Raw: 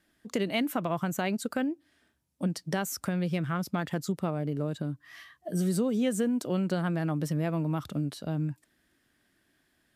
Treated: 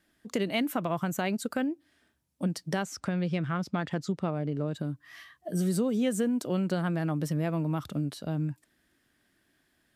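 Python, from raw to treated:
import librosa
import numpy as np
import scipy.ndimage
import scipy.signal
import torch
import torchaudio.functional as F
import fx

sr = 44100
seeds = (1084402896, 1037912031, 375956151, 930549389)

y = fx.lowpass(x, sr, hz=5800.0, slope=12, at=(2.83, 4.75))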